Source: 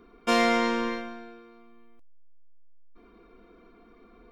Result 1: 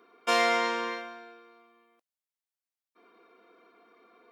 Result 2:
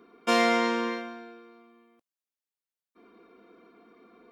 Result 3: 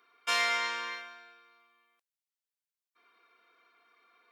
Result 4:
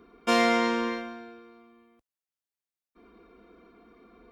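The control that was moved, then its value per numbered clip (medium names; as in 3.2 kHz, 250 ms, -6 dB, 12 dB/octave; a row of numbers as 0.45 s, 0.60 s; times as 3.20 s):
high-pass, cutoff frequency: 500 Hz, 190 Hz, 1.4 kHz, 51 Hz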